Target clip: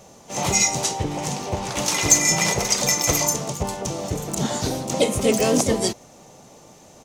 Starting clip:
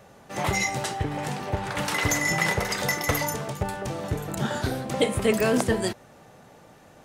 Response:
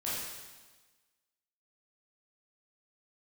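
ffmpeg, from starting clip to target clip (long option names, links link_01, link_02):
-filter_complex "[0:a]asplit=3[link_01][link_02][link_03];[link_02]asetrate=29433,aresample=44100,atempo=1.49831,volume=-15dB[link_04];[link_03]asetrate=52444,aresample=44100,atempo=0.840896,volume=-7dB[link_05];[link_01][link_04][link_05]amix=inputs=3:normalize=0,acontrast=65,equalizer=frequency=100:width_type=o:width=0.67:gain=-4,equalizer=frequency=1600:width_type=o:width=0.67:gain=-10,equalizer=frequency=6300:width_type=o:width=0.67:gain=12,volume=-3.5dB"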